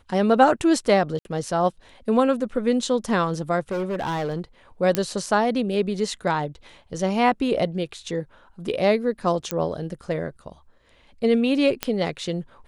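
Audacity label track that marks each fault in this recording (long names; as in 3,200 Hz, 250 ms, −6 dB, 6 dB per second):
1.190000	1.250000	drop-out 61 ms
3.710000	4.400000	clipping −23 dBFS
4.950000	4.950000	click −5 dBFS
9.510000	9.510000	click −9 dBFS
11.830000	11.830000	click −7 dBFS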